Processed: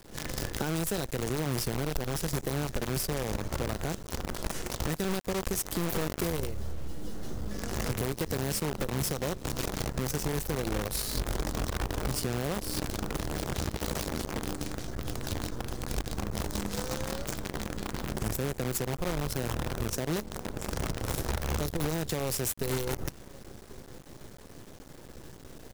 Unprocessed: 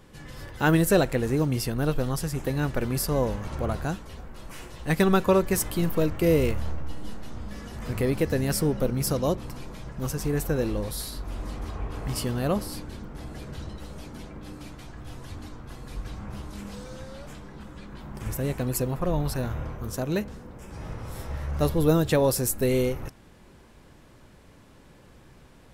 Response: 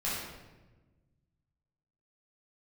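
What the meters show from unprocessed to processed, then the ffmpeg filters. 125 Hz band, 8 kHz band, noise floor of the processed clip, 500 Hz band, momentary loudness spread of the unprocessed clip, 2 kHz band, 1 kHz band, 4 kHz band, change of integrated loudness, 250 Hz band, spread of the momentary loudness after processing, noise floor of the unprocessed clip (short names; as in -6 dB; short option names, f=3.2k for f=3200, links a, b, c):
-5.0 dB, -0.5 dB, -48 dBFS, -7.5 dB, 20 LU, -3.5 dB, -3.5 dB, +1.0 dB, -6.5 dB, -6.5 dB, 11 LU, -53 dBFS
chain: -filter_complex "[0:a]equalizer=f=400:t=o:w=0.67:g=4,equalizer=f=1k:t=o:w=0.67:g=-5,equalizer=f=2.5k:t=o:w=0.67:g=-7,equalizer=f=6.3k:t=o:w=0.67:g=4,acrossover=split=140|3000[a][b][c];[b]acompressor=threshold=-25dB:ratio=10[d];[a][d][c]amix=inputs=3:normalize=0,asoftclip=type=tanh:threshold=-15.5dB,adynamicequalizer=threshold=0.00398:dfrequency=250:dqfactor=6.4:tfrequency=250:tqfactor=6.4:attack=5:release=100:ratio=0.375:range=2.5:mode=cutabove:tftype=bell,acompressor=threshold=-36dB:ratio=10,asplit=2[e][f];[f]adelay=1093,lowpass=f=1.3k:p=1,volume=-17.5dB,asplit=2[g][h];[h]adelay=1093,lowpass=f=1.3k:p=1,volume=0.38,asplit=2[i][j];[j]adelay=1093,lowpass=f=1.3k:p=1,volume=0.38[k];[e][g][i][k]amix=inputs=4:normalize=0,acrusher=bits=7:dc=4:mix=0:aa=0.000001,volume=7dB"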